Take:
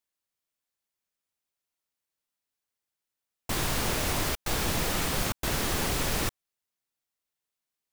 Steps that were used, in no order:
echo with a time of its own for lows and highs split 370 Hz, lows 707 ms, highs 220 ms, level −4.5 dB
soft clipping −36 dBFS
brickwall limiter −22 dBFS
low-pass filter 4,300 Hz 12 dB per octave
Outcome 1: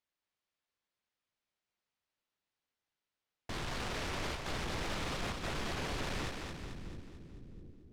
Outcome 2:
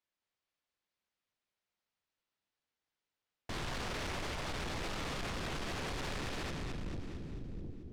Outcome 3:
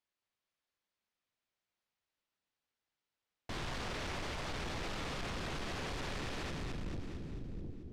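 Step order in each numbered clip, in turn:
brickwall limiter, then low-pass filter, then soft clipping, then echo with a time of its own for lows and highs
echo with a time of its own for lows and highs, then brickwall limiter, then low-pass filter, then soft clipping
echo with a time of its own for lows and highs, then brickwall limiter, then soft clipping, then low-pass filter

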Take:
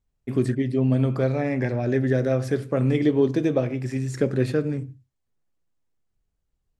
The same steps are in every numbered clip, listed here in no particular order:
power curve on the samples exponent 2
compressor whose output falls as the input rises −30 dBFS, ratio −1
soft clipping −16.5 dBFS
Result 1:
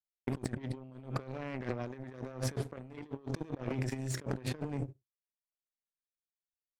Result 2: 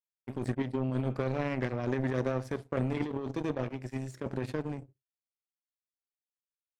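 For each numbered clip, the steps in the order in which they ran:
compressor whose output falls as the input rises, then power curve on the samples, then soft clipping
power curve on the samples, then compressor whose output falls as the input rises, then soft clipping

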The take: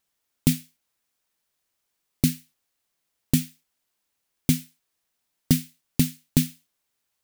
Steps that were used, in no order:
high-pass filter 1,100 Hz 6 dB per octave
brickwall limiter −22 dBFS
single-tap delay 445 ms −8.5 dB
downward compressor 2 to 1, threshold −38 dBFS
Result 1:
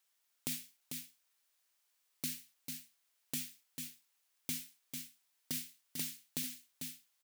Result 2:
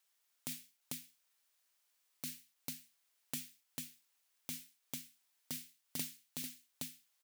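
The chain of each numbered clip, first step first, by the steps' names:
high-pass filter, then brickwall limiter, then single-tap delay, then downward compressor
single-tap delay, then downward compressor, then high-pass filter, then brickwall limiter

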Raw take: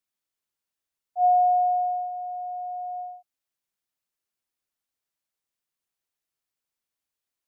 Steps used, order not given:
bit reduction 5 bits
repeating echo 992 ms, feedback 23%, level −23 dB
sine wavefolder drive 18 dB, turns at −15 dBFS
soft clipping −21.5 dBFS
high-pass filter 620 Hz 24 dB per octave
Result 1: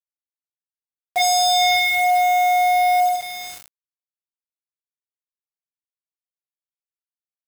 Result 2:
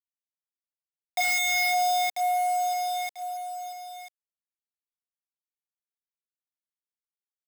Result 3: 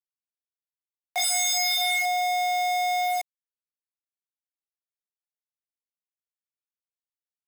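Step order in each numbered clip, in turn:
high-pass filter, then soft clipping, then repeating echo, then sine wavefolder, then bit reduction
bit reduction, then repeating echo, then sine wavefolder, then high-pass filter, then soft clipping
sine wavefolder, then repeating echo, then soft clipping, then bit reduction, then high-pass filter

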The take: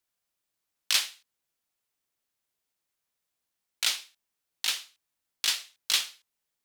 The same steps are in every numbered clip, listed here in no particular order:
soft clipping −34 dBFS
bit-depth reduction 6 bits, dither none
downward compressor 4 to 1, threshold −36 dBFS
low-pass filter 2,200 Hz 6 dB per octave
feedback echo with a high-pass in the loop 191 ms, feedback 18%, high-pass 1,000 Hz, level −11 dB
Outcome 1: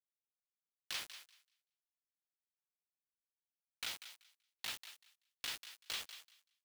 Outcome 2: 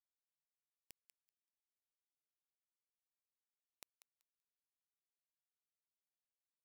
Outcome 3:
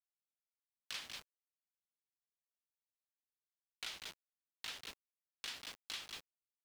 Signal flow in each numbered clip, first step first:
low-pass filter, then bit-depth reduction, then downward compressor, then soft clipping, then feedback echo with a high-pass in the loop
downward compressor, then soft clipping, then low-pass filter, then bit-depth reduction, then feedback echo with a high-pass in the loop
feedback echo with a high-pass in the loop, then bit-depth reduction, then downward compressor, then low-pass filter, then soft clipping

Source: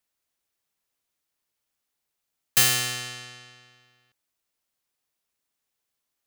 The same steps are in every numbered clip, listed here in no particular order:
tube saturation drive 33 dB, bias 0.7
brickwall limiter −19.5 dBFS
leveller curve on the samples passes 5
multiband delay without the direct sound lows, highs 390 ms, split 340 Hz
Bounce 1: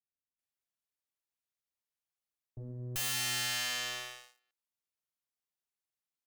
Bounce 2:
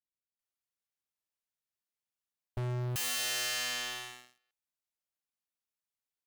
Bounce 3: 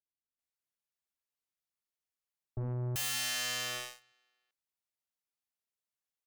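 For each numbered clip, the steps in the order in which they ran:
brickwall limiter, then leveller curve on the samples, then multiband delay without the direct sound, then tube saturation
multiband delay without the direct sound, then brickwall limiter, then leveller curve on the samples, then tube saturation
leveller curve on the samples, then multiband delay without the direct sound, then brickwall limiter, then tube saturation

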